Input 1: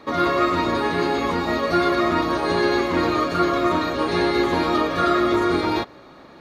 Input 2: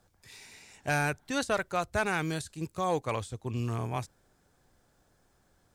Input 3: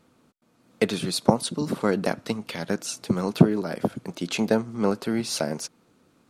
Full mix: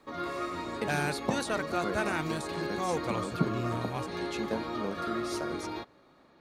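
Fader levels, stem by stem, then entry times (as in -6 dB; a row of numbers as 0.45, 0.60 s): -15.5, -3.0, -13.0 dB; 0.00, 0.00, 0.00 s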